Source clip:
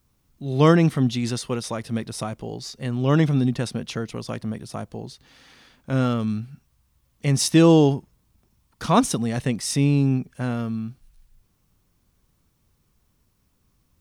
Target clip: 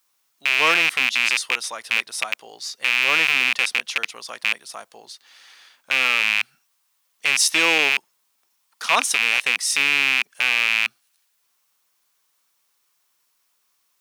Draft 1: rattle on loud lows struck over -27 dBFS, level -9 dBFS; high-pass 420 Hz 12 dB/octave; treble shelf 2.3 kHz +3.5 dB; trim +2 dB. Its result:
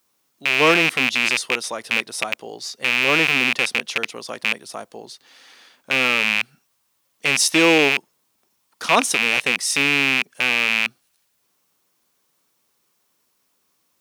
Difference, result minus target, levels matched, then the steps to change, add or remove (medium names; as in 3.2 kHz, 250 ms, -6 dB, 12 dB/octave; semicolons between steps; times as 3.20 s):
500 Hz band +8.5 dB
change: high-pass 930 Hz 12 dB/octave